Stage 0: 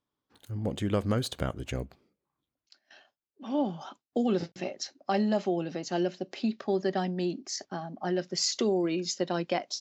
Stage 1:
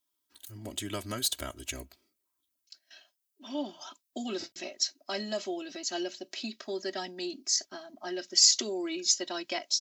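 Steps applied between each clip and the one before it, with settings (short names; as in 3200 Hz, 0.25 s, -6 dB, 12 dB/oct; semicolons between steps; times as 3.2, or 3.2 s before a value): pre-emphasis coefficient 0.9; comb 3.1 ms, depth 97%; gain +8 dB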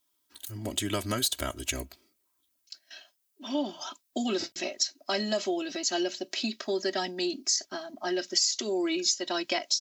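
compressor 8:1, threshold -30 dBFS, peak gain reduction 13.5 dB; gain +6.5 dB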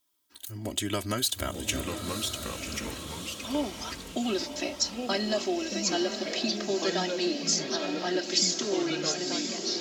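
ending faded out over 1.16 s; echoes that change speed 0.765 s, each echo -3 st, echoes 2, each echo -6 dB; diffused feedback echo 1.007 s, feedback 45%, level -7 dB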